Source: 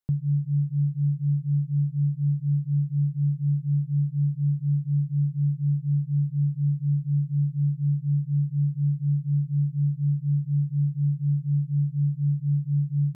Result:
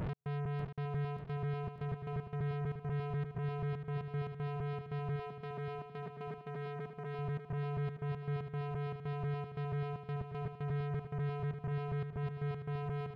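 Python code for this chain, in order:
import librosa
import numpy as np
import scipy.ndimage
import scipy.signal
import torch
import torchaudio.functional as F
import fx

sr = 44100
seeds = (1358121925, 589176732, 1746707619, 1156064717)

y = fx.spec_swells(x, sr, rise_s=1.48)
y = fx.low_shelf(y, sr, hz=260.0, db=10.5)
y = np.clip(10.0 ** (30.0 / 20.0) * y, -1.0, 1.0) / 10.0 ** (30.0 / 20.0)
y = fx.step_gate(y, sr, bpm=116, pattern='x.xxx.xxx.xxx.x.', floor_db=-60.0, edge_ms=4.5)
y = 10.0 ** (-32.5 / 20.0) * np.tanh(y / 10.0 ** (-32.5 / 20.0))
y = fx.brickwall_highpass(y, sr, low_hz=150.0, at=(5.16, 7.19))
y = fx.echo_feedback(y, sr, ms=593, feedback_pct=55, wet_db=-8)
y = F.gain(torch.from_numpy(y), -3.0).numpy()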